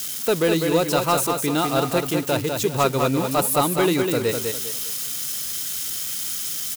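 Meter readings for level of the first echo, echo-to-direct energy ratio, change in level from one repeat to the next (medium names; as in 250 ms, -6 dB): -5.0 dB, -4.5 dB, -10.0 dB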